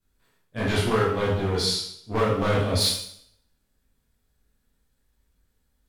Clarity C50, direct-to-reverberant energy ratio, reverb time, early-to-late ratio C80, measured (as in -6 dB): 2.0 dB, -8.0 dB, 0.65 s, 5.5 dB